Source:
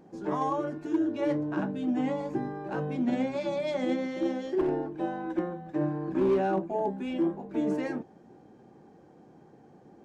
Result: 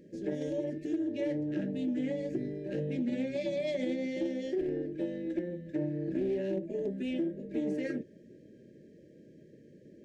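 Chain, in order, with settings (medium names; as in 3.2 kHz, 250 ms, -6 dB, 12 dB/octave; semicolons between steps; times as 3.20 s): FFT band-reject 640–1600 Hz; compression, threshold -29 dBFS, peak gain reduction 8 dB; loudspeaker Doppler distortion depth 0.11 ms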